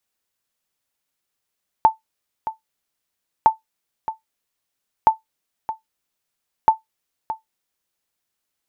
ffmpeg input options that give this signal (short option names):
-f lavfi -i "aevalsrc='0.668*(sin(2*PI*884*mod(t,1.61))*exp(-6.91*mod(t,1.61)/0.14)+0.224*sin(2*PI*884*max(mod(t,1.61)-0.62,0))*exp(-6.91*max(mod(t,1.61)-0.62,0)/0.14))':d=6.44:s=44100"